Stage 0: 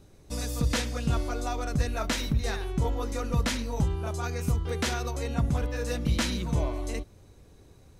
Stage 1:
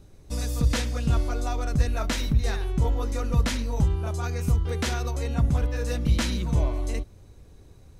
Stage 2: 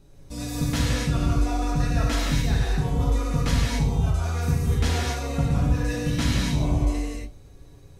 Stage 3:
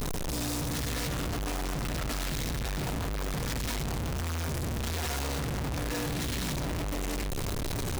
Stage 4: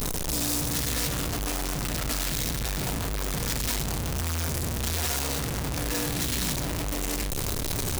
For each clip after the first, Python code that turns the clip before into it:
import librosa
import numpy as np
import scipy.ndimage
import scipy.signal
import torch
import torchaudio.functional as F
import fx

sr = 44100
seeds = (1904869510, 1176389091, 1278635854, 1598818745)

y1 = fx.low_shelf(x, sr, hz=100.0, db=7.5)
y2 = y1 + 0.36 * np.pad(y1, (int(7.2 * sr / 1000.0), 0))[:len(y1)]
y2 = fx.rev_gated(y2, sr, seeds[0], gate_ms=300, shape='flat', drr_db=-5.0)
y2 = y2 * librosa.db_to_amplitude(-4.0)
y3 = np.sign(y2) * np.sqrt(np.mean(np.square(y2)))
y3 = y3 * librosa.db_to_amplitude(-8.5)
y4 = fx.high_shelf(y3, sr, hz=4600.0, db=9.0)
y4 = fx.doubler(y4, sr, ms=37.0, db=-14)
y4 = y4 * librosa.db_to_amplitude(1.5)